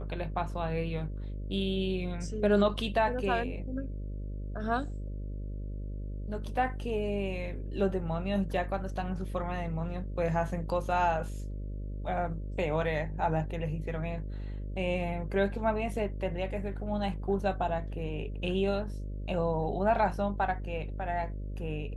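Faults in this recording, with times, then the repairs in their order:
buzz 50 Hz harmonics 12 -37 dBFS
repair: de-hum 50 Hz, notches 12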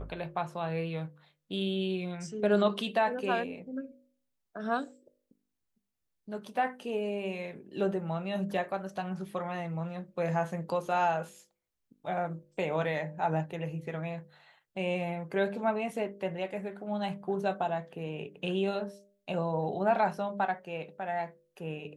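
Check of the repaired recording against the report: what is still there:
nothing left

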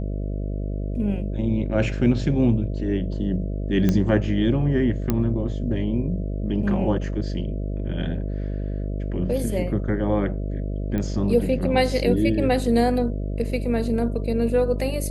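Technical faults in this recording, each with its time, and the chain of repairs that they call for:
buzz 50 Hz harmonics 13 -27 dBFS
3.89 s: pop -9 dBFS
5.10 s: pop -9 dBFS
10.98 s: pop -16 dBFS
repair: de-click; de-hum 50 Hz, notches 13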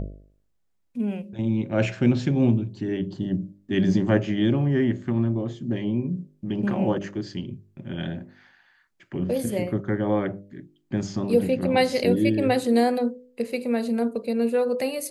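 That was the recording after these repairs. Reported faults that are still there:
nothing left

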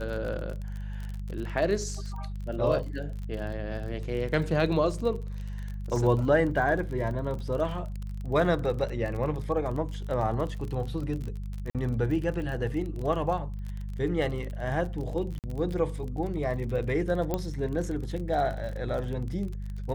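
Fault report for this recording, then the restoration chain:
crackle 37 per s -34 dBFS
hum 50 Hz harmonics 4 -35 dBFS
11.70–11.75 s: dropout 47 ms
15.39–15.44 s: dropout 48 ms
17.34 s: pop -15 dBFS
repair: de-click; de-hum 50 Hz, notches 4; interpolate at 11.70 s, 47 ms; interpolate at 15.39 s, 48 ms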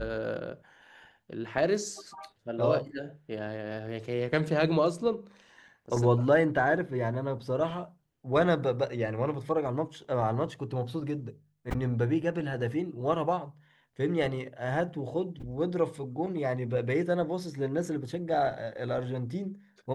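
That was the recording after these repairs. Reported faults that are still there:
nothing left

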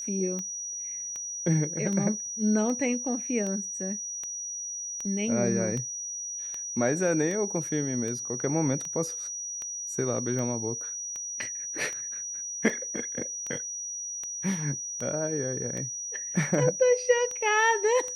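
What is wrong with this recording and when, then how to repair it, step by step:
tick 78 rpm -23 dBFS
whine 5.8 kHz -33 dBFS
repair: de-click; band-stop 5.8 kHz, Q 30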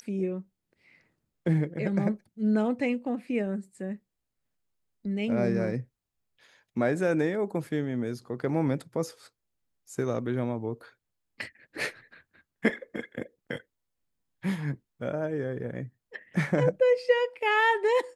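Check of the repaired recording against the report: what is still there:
nothing left

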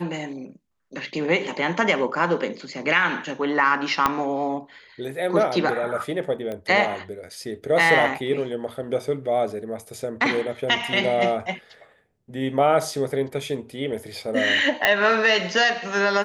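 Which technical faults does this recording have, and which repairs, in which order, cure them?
4.06 s: pop -5 dBFS
6.52 s: pop -20 dBFS
14.85 s: pop -3 dBFS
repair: de-click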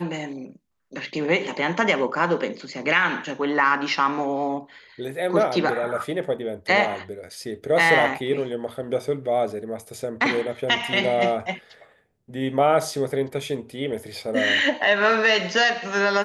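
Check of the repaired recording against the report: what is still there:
4.06 s: pop
14.85 s: pop

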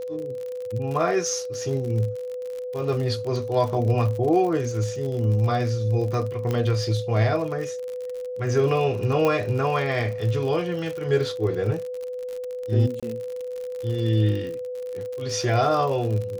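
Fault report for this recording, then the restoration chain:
crackle 59 per s -30 dBFS
whine 500 Hz -29 dBFS
6.51 s: pop -14 dBFS
9.25 s: pop -11 dBFS
13.00–13.03 s: dropout 26 ms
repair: de-click; band-stop 500 Hz, Q 30; interpolate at 13.00 s, 26 ms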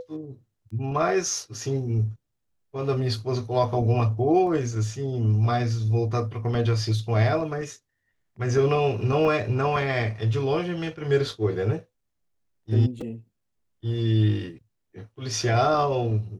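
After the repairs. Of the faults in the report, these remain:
9.25 s: pop

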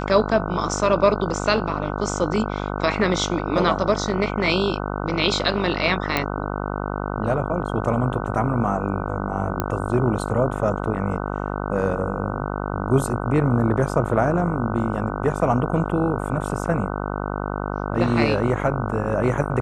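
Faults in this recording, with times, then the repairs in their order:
buzz 50 Hz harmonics 30 -27 dBFS
6.17 s: pop -6 dBFS
9.60 s: pop -8 dBFS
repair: de-click; de-hum 50 Hz, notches 30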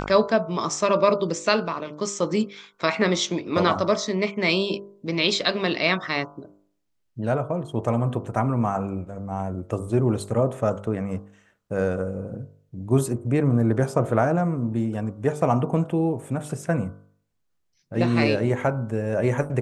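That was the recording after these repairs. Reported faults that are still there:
nothing left

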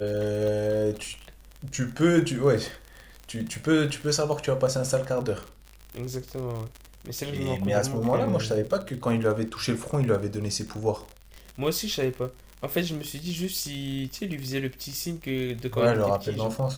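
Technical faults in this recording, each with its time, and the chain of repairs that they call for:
crackle 55 per s -31 dBFS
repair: de-click

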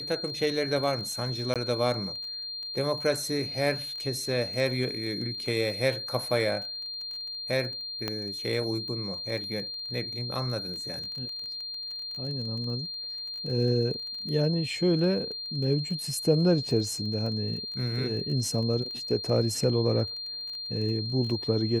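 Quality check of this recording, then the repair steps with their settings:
crackle 20 per s -36 dBFS
whine 4.2 kHz -34 dBFS
1.54–1.56 s: dropout 17 ms
8.08 s: pop -15 dBFS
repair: de-click; band-stop 4.2 kHz, Q 30; interpolate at 1.54 s, 17 ms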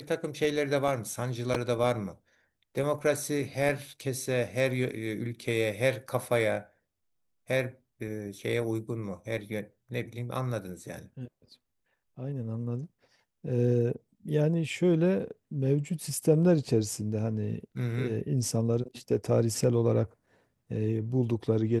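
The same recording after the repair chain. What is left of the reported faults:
nothing left

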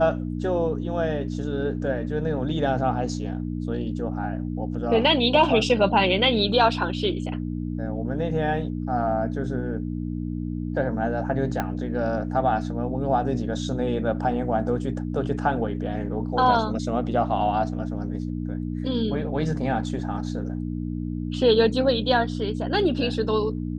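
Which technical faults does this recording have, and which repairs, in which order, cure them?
hum 60 Hz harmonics 5 -29 dBFS
11.60 s: pop -11 dBFS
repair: de-click; de-hum 60 Hz, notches 5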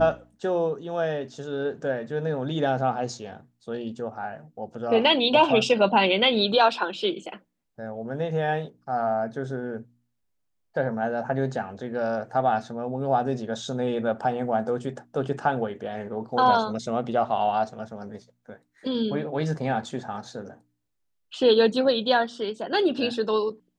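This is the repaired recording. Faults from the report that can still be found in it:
11.60 s: pop

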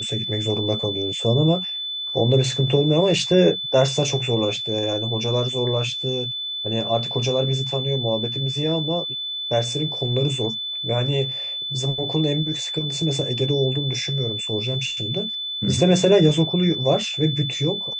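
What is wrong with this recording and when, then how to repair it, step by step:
whine 3.5 kHz -26 dBFS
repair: band-stop 3.5 kHz, Q 30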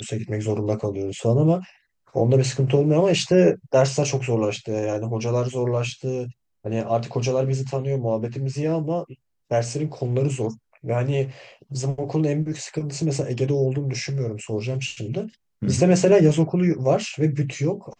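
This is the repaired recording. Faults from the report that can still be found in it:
nothing left

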